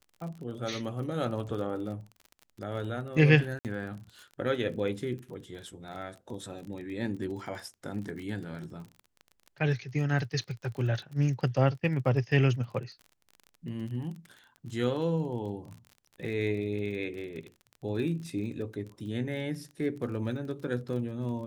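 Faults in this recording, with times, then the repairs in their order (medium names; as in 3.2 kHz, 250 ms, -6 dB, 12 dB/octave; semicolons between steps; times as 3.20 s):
crackle 30 per s -39 dBFS
3.59–3.65 s: dropout 58 ms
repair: de-click; interpolate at 3.59 s, 58 ms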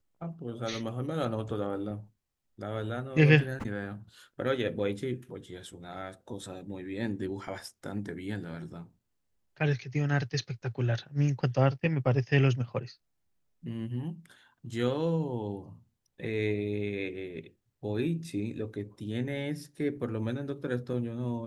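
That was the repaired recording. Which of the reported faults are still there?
nothing left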